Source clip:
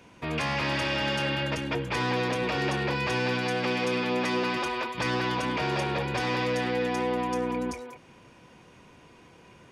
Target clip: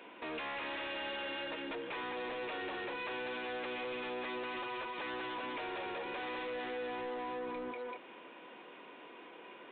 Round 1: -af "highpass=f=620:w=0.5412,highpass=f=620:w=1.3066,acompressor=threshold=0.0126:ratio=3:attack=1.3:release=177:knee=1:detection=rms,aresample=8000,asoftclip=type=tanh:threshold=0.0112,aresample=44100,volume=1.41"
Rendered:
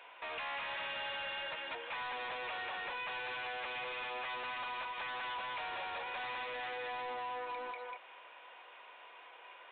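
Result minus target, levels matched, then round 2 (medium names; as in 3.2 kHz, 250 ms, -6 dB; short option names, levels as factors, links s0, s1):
250 Hz band -15.5 dB
-af "highpass=f=290:w=0.5412,highpass=f=290:w=1.3066,acompressor=threshold=0.0126:ratio=3:attack=1.3:release=177:knee=1:detection=rms,aresample=8000,asoftclip=type=tanh:threshold=0.0112,aresample=44100,volume=1.41"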